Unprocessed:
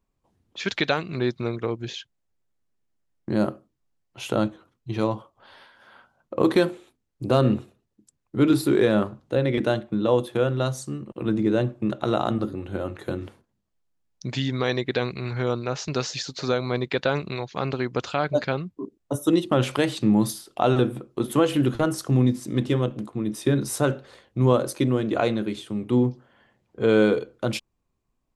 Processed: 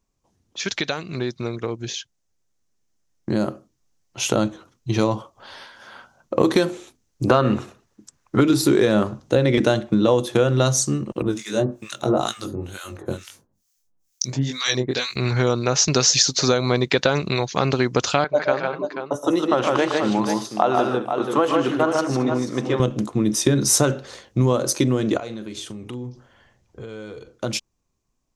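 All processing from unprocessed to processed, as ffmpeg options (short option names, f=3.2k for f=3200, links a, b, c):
-filter_complex "[0:a]asettb=1/sr,asplit=3[a][b][c];[a]atrim=end=7.274[d];[b]atrim=start=7.27:end=8.41,asetpts=PTS-STARTPTS,afade=t=in:d=0.004:c=qsin,afade=t=out:st=1.136:d=0.004:c=qsin,acrossover=split=4800[e][f];[f]acompressor=threshold=-56dB:ratio=4:attack=1:release=60[g];[e][g]amix=inputs=2:normalize=0,equalizer=f=1.3k:t=o:w=2:g=11[h];[c]atrim=start=8.406[i];[d][h]acrossfade=d=0.004:c1=hsin:c2=qsin[j];[j][i]acrossfade=d=0.004:c1=qsin:c2=hsin,asettb=1/sr,asplit=3[k][l][m];[k]atrim=end=11.224[n];[l]atrim=start=11.22:end=15.16,asetpts=PTS-STARTPTS,afade=t=in:d=0.004:c=qsin,afade=t=out:st=3.936:d=0.004:c=qsin,aemphasis=mode=production:type=75fm,flanger=delay=19.5:depth=4.1:speed=1.8,acrossover=split=1200[o][p];[o]aeval=exprs='val(0)*(1-1/2+1/2*cos(2*PI*2.2*n/s))':c=same[q];[p]aeval=exprs='val(0)*(1-1/2-1/2*cos(2*PI*2.2*n/s))':c=same[r];[q][r]amix=inputs=2:normalize=0[s];[m]atrim=start=15.156[t];[n][s]acrossfade=d=0.004:c1=hsin:c2=qsin[u];[u][t]acrossfade=d=0.004:c1=qsin:c2=hsin,asettb=1/sr,asplit=3[v][w][x];[v]atrim=end=18.244[y];[w]atrim=start=18.24:end=22.8,asetpts=PTS-STARTPTS,afade=t=in:d=0.004:c=qsin,afade=t=out:st=4.556:d=0.004:c=qsin,bandpass=f=950:t=q:w=0.89,aecho=1:1:121|153|219|485:0.299|0.631|0.141|0.316,atrim=end_sample=201096[z];[x]atrim=start=22.796[aa];[y][z]acrossfade=d=0.004:c1=hsin:c2=qsin[ab];[ab][aa]acrossfade=d=0.004:c1=qsin:c2=hsin,asettb=1/sr,asplit=3[ac][ad][ae];[ac]atrim=end=25.174[af];[ad]atrim=start=25.17:end=27.29,asetpts=PTS-STARTPTS,afade=t=in:d=0.004:c=qsin,afade=t=out:st=2.116:d=0.004:c=qsin,asubboost=boost=9:cutoff=93,acompressor=threshold=-36dB:ratio=5:attack=3.2:release=140:knee=1:detection=peak,asplit=2[ag][ah];[ah]adelay=41,volume=-14dB[ai];[ag][ai]amix=inputs=2:normalize=0,atrim=end_sample=93492[aj];[ae]atrim=start=27.286[ak];[af][aj]acrossfade=d=0.004:c1=hsin:c2=qsin[al];[al][ak]acrossfade=d=0.004:c1=qsin:c2=hsin,acompressor=threshold=-22dB:ratio=6,equalizer=f=6.1k:t=o:w=0.72:g=12,dynaudnorm=f=350:g=21:m=9.5dB,volume=1dB"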